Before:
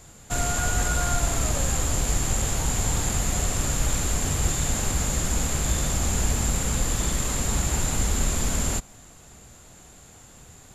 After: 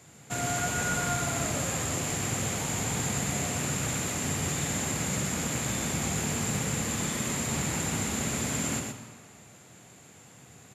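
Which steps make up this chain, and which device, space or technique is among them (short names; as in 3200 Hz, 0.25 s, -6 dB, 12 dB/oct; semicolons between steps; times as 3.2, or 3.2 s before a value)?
PA in a hall (HPF 110 Hz 24 dB/oct; bell 2200 Hz +5.5 dB 0.79 oct; echo 0.123 s -5 dB; reverb RT60 1.8 s, pre-delay 39 ms, DRR 8.5 dB); low shelf 400 Hz +5 dB; gain -6 dB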